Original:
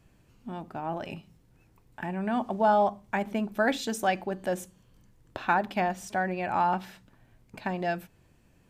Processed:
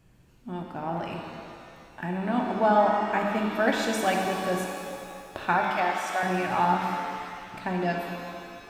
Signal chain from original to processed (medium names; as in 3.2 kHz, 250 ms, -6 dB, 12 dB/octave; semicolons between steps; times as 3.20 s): 5.62–6.23 s: high-pass 410 Hz 24 dB/octave; pitch-shifted reverb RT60 2.4 s, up +7 st, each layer -8 dB, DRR 0.5 dB